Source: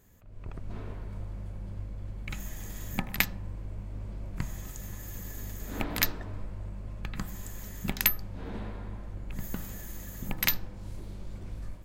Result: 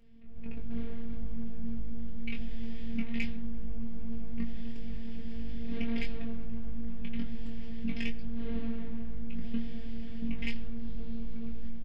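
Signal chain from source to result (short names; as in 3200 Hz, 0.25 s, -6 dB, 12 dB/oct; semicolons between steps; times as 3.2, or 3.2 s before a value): minimum comb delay 0.39 ms; LPF 3300 Hz 24 dB/oct; bell 850 Hz -12.5 dB 2.1 oct; in parallel at +2 dB: negative-ratio compressor -38 dBFS; on the sum: robotiser 230 Hz; soft clip -18 dBFS, distortion -27 dB; flange 0.82 Hz, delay 5.5 ms, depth 9.8 ms, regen -33%; doubler 22 ms -3.5 dB; on a send at -23.5 dB: reverb RT60 0.70 s, pre-delay 70 ms; on the sum: gain +3.5 dB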